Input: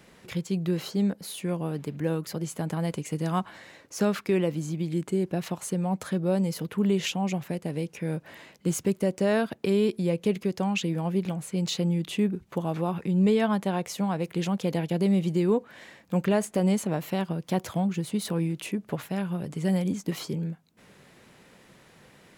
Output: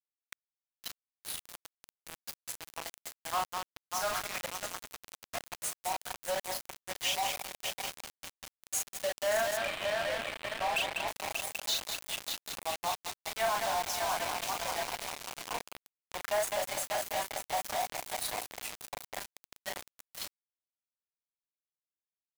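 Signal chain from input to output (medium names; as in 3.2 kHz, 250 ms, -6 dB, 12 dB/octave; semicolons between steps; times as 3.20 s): expander on every frequency bin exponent 1.5; steep high-pass 600 Hz 72 dB/octave; doubling 38 ms -4.5 dB; multi-head delay 196 ms, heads first and third, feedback 73%, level -9 dB; bit crusher 6-bit; 9.57–11.08 s: low-pass 4.1 kHz 12 dB/octave; power-law waveshaper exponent 0.35; trim -6 dB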